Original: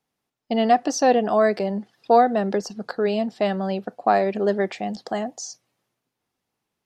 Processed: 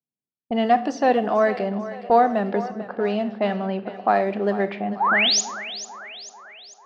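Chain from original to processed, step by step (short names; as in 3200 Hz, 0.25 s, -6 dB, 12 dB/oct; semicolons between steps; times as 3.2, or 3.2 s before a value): G.711 law mismatch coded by mu; low-pass opened by the level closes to 350 Hz, open at -16 dBFS; weighting filter A; gate with hold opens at -44 dBFS; tone controls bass +14 dB, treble -13 dB; painted sound rise, 5–5.41, 760–7200 Hz -19 dBFS; split-band echo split 410 Hz, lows 0.207 s, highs 0.444 s, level -14 dB; on a send at -13.5 dB: reverb RT60 0.50 s, pre-delay 28 ms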